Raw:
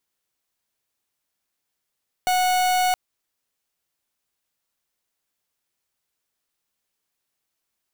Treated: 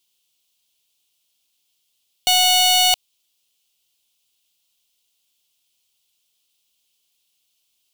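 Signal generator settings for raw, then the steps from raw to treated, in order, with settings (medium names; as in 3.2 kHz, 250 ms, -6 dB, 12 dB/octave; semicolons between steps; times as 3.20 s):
pulse 734 Hz, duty 43% -20 dBFS 0.67 s
resonant high shelf 2.3 kHz +9.5 dB, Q 3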